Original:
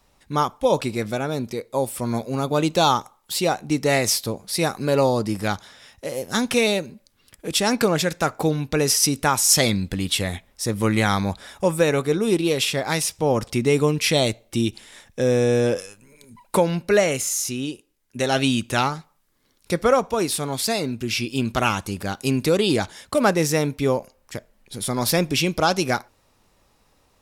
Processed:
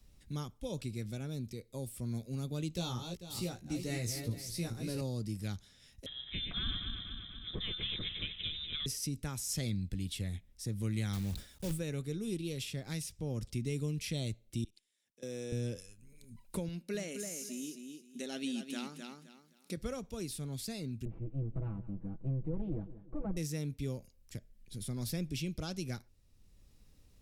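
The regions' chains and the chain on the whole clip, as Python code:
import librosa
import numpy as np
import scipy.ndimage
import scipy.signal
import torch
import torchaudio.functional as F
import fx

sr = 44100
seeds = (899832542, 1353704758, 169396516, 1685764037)

y = fx.chain(x, sr, fx.reverse_delay_fb(ms=222, feedback_pct=40, wet_db=-7.5),
    fx.doubler(ms=17.0, db=-4), at=(2.73, 5.01))
y = fx.chain(y, sr, fx.reverse_delay_fb(ms=121, feedback_pct=71, wet_db=-5.5),
    fx.highpass(hz=62.0, slope=12),
    fx.freq_invert(carrier_hz=3800), at=(6.06, 8.86))
y = fx.chain(y, sr, fx.block_float(bits=3),
    fx.sustainer(db_per_s=100.0), at=(11.13, 11.8))
y = fx.chain(y, sr, fx.highpass(hz=340.0, slope=12),
    fx.level_steps(step_db=21),
    fx.upward_expand(threshold_db=-31.0, expansion=1.5), at=(14.64, 15.52))
y = fx.chain(y, sr, fx.brickwall_highpass(low_hz=170.0),
    fx.echo_feedback(ms=260, feedback_pct=19, wet_db=-7.5), at=(16.68, 19.77))
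y = fx.chain(y, sr, fx.lower_of_two(delay_ms=6.1),
    fx.lowpass(hz=1000.0, slope=24),
    fx.echo_feedback(ms=182, feedback_pct=33, wet_db=-17.0), at=(21.05, 23.37))
y = fx.tone_stack(y, sr, knobs='10-0-1')
y = fx.band_squash(y, sr, depth_pct=40)
y = y * 10.0 ** (2.5 / 20.0)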